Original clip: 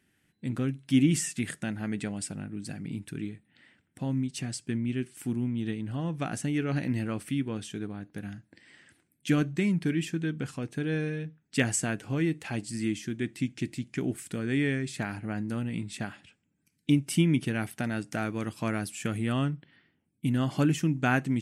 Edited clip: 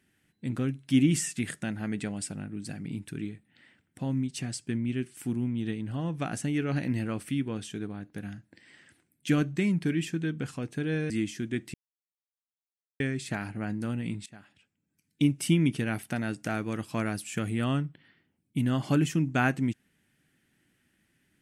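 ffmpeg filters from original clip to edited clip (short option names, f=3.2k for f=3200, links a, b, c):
-filter_complex "[0:a]asplit=5[a][b][c][d][e];[a]atrim=end=11.102[f];[b]atrim=start=12.778:end=13.42,asetpts=PTS-STARTPTS,afade=t=out:st=0.638:d=0.004:c=hsin[g];[c]atrim=start=13.42:end=14.68,asetpts=PTS-STARTPTS,volume=0[h];[d]atrim=start=14.68:end=15.94,asetpts=PTS-STARTPTS,afade=t=in:d=0.004:c=hsin,afade=t=out:st=1.256:d=0.004:c=hsin:silence=0.0944061[i];[e]atrim=start=15.94,asetpts=PTS-STARTPTS,afade=t=in:d=1.05:silence=0.0944061[j];[g][h][i][j]concat=n=4:v=0:a=1[k];[f][k]acrossfade=d=0.004:c1=hsin:c2=hsin"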